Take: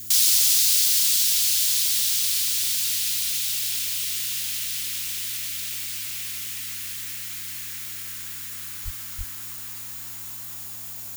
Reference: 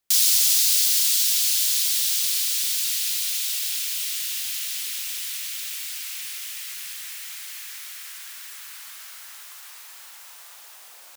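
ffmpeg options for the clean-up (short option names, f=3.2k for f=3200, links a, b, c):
-filter_complex "[0:a]bandreject=f=104.2:t=h:w=4,bandreject=f=208.4:t=h:w=4,bandreject=f=312.6:t=h:w=4,bandreject=f=6.9k:w=30,asplit=3[a][b][c];[a]afade=t=out:st=8.84:d=0.02[d];[b]highpass=f=140:w=0.5412,highpass=f=140:w=1.3066,afade=t=in:st=8.84:d=0.02,afade=t=out:st=8.96:d=0.02[e];[c]afade=t=in:st=8.96:d=0.02[f];[d][e][f]amix=inputs=3:normalize=0,asplit=3[g][h][i];[g]afade=t=out:st=9.17:d=0.02[j];[h]highpass=f=140:w=0.5412,highpass=f=140:w=1.3066,afade=t=in:st=9.17:d=0.02,afade=t=out:st=9.29:d=0.02[k];[i]afade=t=in:st=9.29:d=0.02[l];[j][k][l]amix=inputs=3:normalize=0,afftdn=nr=8:nf=-36"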